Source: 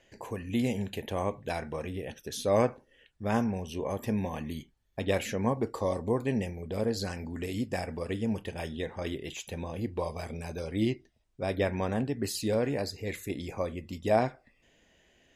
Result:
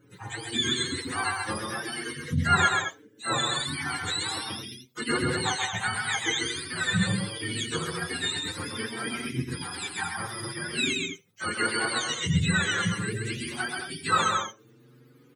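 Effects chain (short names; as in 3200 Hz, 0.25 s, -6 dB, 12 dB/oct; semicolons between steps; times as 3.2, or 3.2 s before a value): spectrum mirrored in octaves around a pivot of 910 Hz; loudspeakers at several distances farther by 45 m -4 dB, 75 m -8 dB; endless flanger 7.3 ms +0.7 Hz; gain +7.5 dB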